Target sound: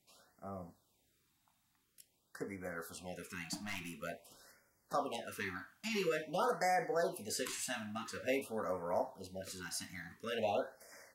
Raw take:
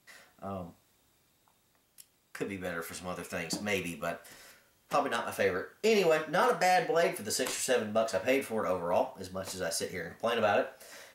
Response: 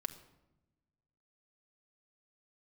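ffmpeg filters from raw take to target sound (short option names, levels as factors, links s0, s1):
-filter_complex "[0:a]asettb=1/sr,asplit=3[s0][s1][s2];[s0]atrim=end=3.544[s3];[s1]atrim=start=3.54:end=3.98,asetpts=PTS-STARTPTS,afade=t=in:d=0.004:c=qsin,afade=t=out:st=0.436:d=0.004:c=qsin,aeval=exprs='clip(val(0),-1,0.0158)':c=same[s4];[s2]atrim=start=3.976[s5];[s3][s4]acrossfade=d=0.004:c1=hsin:c2=qsin[s6];[s6][s5]acrossfade=d=0.004:c1=qsin:c2=hsin,afftfilt=real='re*(1-between(b*sr/1024,430*pow(3400/430,0.5+0.5*sin(2*PI*0.48*pts/sr))/1.41,430*pow(3400/430,0.5+0.5*sin(2*PI*0.48*pts/sr))*1.41))':imag='im*(1-between(b*sr/1024,430*pow(3400/430,0.5+0.5*sin(2*PI*0.48*pts/sr))/1.41,430*pow(3400/430,0.5+0.5*sin(2*PI*0.48*pts/sr))*1.41))':win_size=1024:overlap=0.75,volume=0.447"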